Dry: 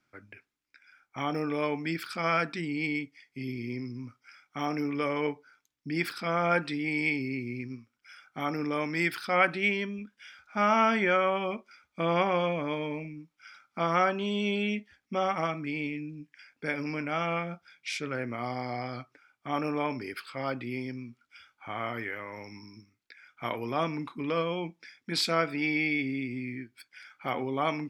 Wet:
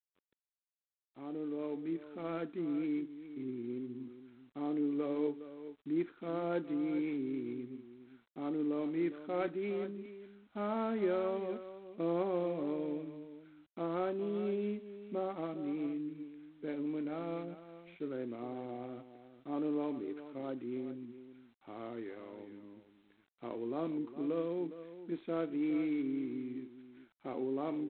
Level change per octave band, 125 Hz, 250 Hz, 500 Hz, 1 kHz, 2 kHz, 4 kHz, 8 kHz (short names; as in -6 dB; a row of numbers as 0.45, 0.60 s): -11.5 dB, -2.5 dB, -5.5 dB, -14.5 dB, -21.5 dB, -21.0 dB, under -30 dB